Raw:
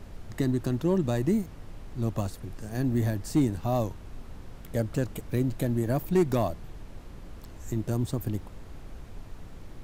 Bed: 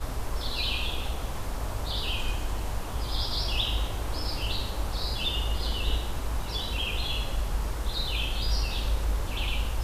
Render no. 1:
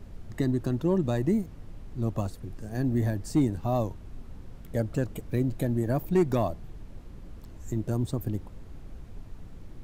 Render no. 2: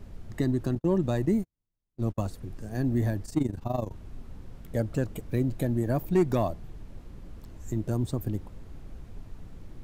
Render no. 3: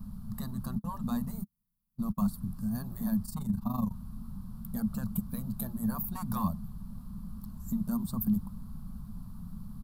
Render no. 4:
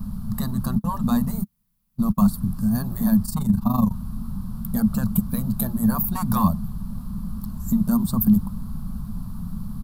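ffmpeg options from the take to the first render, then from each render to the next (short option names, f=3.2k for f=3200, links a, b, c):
-af "afftdn=nr=6:nf=-45"
-filter_complex "[0:a]asettb=1/sr,asplit=3[a][b][c];[a]atrim=end=0.754[d];[b]atrim=start=0.75:end=2.25,asetpts=PTS-STARTPTS,afade=t=in:d=0.004:c=qsin,afade=t=out:st=1.496:d=0.004:c=qsin,agate=range=-45dB:threshold=-32dB:ratio=16:release=100:detection=peak[e];[c]atrim=start=2.246[f];[d][e]acrossfade=d=0.004:c1=hsin:c2=qsin[g];[g][f]acrossfade=d=0.004:c1=qsin:c2=hsin,asplit=3[h][i][j];[h]afade=t=out:st=3.23:d=0.02[k];[i]tremolo=f=24:d=0.824,afade=t=in:st=3.23:d=0.02,afade=t=out:st=3.92:d=0.02[l];[j]afade=t=in:st=3.92:d=0.02[m];[k][l][m]amix=inputs=3:normalize=0"
-af "afftfilt=real='re*lt(hypot(re,im),0.251)':imag='im*lt(hypot(re,im),0.251)':win_size=1024:overlap=0.75,firequalizer=gain_entry='entry(110,0);entry(210,14);entry(320,-22);entry(1100,4);entry(2000,-19);entry(4400,-1);entry(6400,-8);entry(11000,11)':delay=0.05:min_phase=1"
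-af "volume=11.5dB"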